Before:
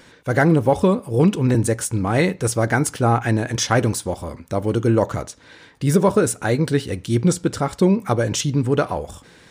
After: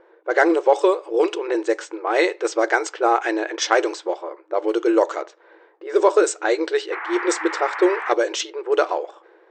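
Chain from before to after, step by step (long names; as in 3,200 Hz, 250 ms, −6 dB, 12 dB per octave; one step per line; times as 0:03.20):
0:06.91–0:08.12: noise in a band 800–2,100 Hz −31 dBFS
brick-wall band-pass 320–8,500 Hz
low-pass that shuts in the quiet parts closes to 780 Hz, open at −15.5 dBFS
level +2 dB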